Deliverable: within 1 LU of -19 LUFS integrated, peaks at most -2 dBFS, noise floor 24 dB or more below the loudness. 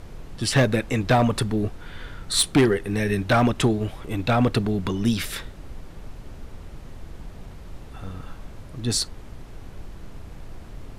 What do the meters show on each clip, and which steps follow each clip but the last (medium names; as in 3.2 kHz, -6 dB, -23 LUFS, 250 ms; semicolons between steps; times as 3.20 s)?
clipped samples 0.5%; clipping level -12.0 dBFS; noise floor -41 dBFS; noise floor target -47 dBFS; loudness -23.0 LUFS; peak level -12.0 dBFS; loudness target -19.0 LUFS
-> clip repair -12 dBFS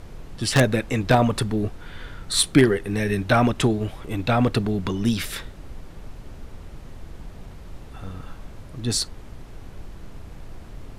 clipped samples 0.0%; noise floor -41 dBFS; noise floor target -47 dBFS
-> noise print and reduce 6 dB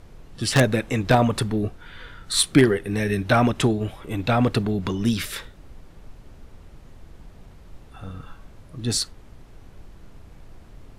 noise floor -47 dBFS; loudness -22.5 LUFS; peak level -3.0 dBFS; loudness target -19.0 LUFS
-> trim +3.5 dB; peak limiter -2 dBFS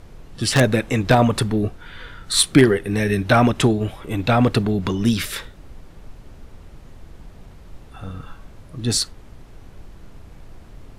loudness -19.0 LUFS; peak level -2.0 dBFS; noise floor -44 dBFS